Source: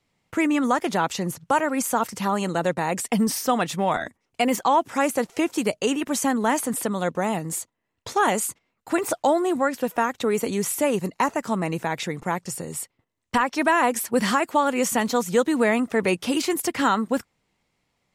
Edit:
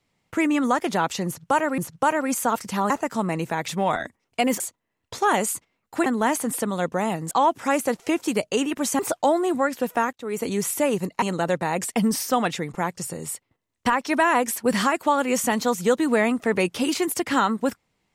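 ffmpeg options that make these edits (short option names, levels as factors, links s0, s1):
-filter_complex "[0:a]asplit=11[s0][s1][s2][s3][s4][s5][s6][s7][s8][s9][s10];[s0]atrim=end=1.782[s11];[s1]atrim=start=1.258:end=2.382[s12];[s2]atrim=start=11.228:end=12.012[s13];[s3]atrim=start=3.688:end=4.612[s14];[s4]atrim=start=7.538:end=9.002[s15];[s5]atrim=start=6.288:end=7.542[s16];[s6]atrim=start=4.608:end=6.292[s17];[s7]atrim=start=8.998:end=10.14,asetpts=PTS-STARTPTS,afade=t=out:st=1.138:d=0.004:c=hsin[s18];[s8]atrim=start=10.14:end=11.232,asetpts=PTS-STARTPTS,afade=t=in:d=0.36[s19];[s9]atrim=start=2.378:end=3.692[s20];[s10]atrim=start=12.008[s21];[s11][s12]acrossfade=d=0.004:c1=hsin:c2=hsin[s22];[s22][s13]acrossfade=d=0.004:c1=hsin:c2=hsin[s23];[s23][s14]acrossfade=d=0.004:c1=hsin:c2=hsin[s24];[s24][s15]acrossfade=d=0.004:c1=hsin:c2=hsin[s25];[s25][s16]acrossfade=d=0.004:c1=hsin:c2=hsin[s26];[s26][s17]acrossfade=d=0.004:c1=hsin:c2=hsin[s27];[s18][s19]concat=n=2:v=0:a=1[s28];[s27][s28]acrossfade=d=0.004:c1=hsin:c2=hsin[s29];[s29][s20]acrossfade=d=0.004:c1=hsin:c2=hsin[s30];[s30][s21]acrossfade=d=0.004:c1=hsin:c2=hsin"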